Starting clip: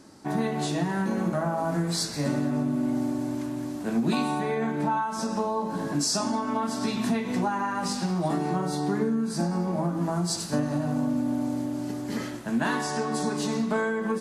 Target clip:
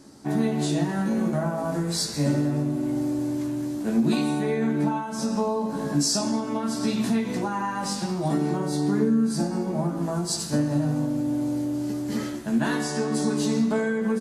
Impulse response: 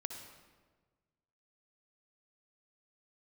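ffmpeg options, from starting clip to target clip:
-filter_complex "[0:a]equalizer=f=1.4k:t=o:w=2.9:g=-4.5,asplit=2[a][b];[b]adelay=14,volume=-5dB[c];[a][c]amix=inputs=2:normalize=0,asplit=2[d][e];[1:a]atrim=start_sample=2205,adelay=71[f];[e][f]afir=irnorm=-1:irlink=0,volume=-13.5dB[g];[d][g]amix=inputs=2:normalize=0,volume=2dB"

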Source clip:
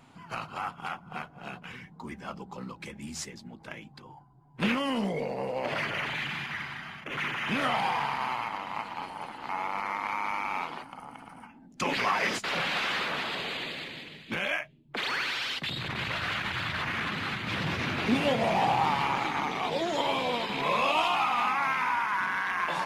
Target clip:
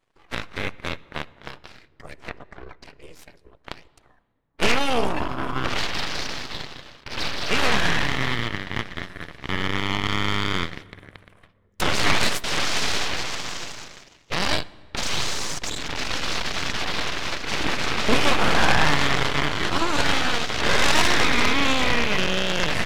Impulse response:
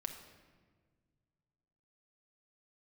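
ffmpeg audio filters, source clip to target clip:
-filter_complex "[0:a]asettb=1/sr,asplit=3[a][b][c];[a]atrim=end=2.294[d];[b]atrim=start=2.29:end=3.67,asetpts=PTS-STARTPTS,afade=t=in:d=0.004:c=qsin,afade=t=out:st=1.376:d=0.004:c=qsin,bass=f=250:g=-1,treble=f=4k:g=-12[e];[c]atrim=start=3.666[f];[d][e]acrossfade=d=0.004:c1=hsin:c2=qsin[g];[g][f]acrossfade=d=0.004:c1=qsin:c2=hsin,aeval=exprs='0.2*(cos(1*acos(clip(val(0)/0.2,-1,1)))-cos(1*PI/2))+0.0631*(cos(3*acos(clip(val(0)/0.2,-1,1)))-cos(3*PI/2))+0.0501*(cos(6*acos(clip(val(0)/0.2,-1,1)))-cos(6*PI/2))+0.00141*(cos(7*acos(clip(val(0)/0.2,-1,1)))-cos(7*PI/2))':c=same,asplit=2[h][i];[1:a]atrim=start_sample=2205,asetrate=33516,aresample=44100[j];[i][j]afir=irnorm=-1:irlink=0,volume=-12.5dB[k];[h][k]amix=inputs=2:normalize=0,volume=7dB"

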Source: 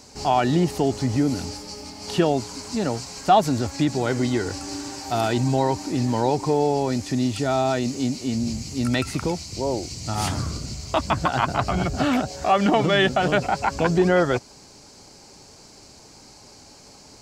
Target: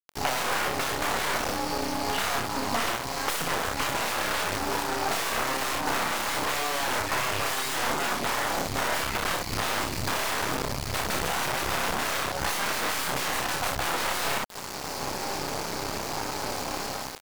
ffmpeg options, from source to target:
-filter_complex "[0:a]highshelf=f=3.7k:g=-3,dynaudnorm=f=190:g=5:m=13dB,acrossover=split=490|3800[a][b][c];[c]alimiter=level_in=11dB:limit=-24dB:level=0:latency=1,volume=-11dB[d];[a][b][d]amix=inputs=3:normalize=0,aeval=exprs='(mod(7.94*val(0)+1,2)-1)/7.94':c=same,aecho=1:1:30|60:0.596|0.596,acompressor=threshold=-27dB:ratio=16,acrusher=bits=5:mix=0:aa=0.000001,aeval=exprs='0.133*(cos(1*acos(clip(val(0)/0.133,-1,1)))-cos(1*PI/2))+0.0266*(cos(6*acos(clip(val(0)/0.133,-1,1)))-cos(6*PI/2))':c=same,equalizer=f=1k:t=o:w=2.6:g=8.5,volume=-3.5dB" -ar 48000 -c:a aac -b:a 192k

